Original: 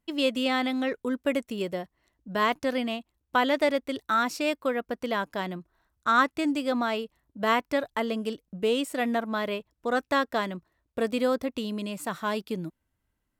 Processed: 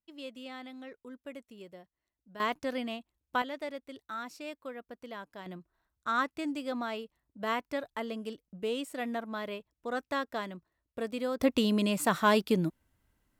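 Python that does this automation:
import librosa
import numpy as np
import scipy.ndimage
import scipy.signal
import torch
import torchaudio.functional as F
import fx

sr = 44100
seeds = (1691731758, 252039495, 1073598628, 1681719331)

y = fx.gain(x, sr, db=fx.steps((0.0, -18.0), (2.4, -6.5), (3.42, -14.5), (5.46, -8.0), (11.4, 5.0)))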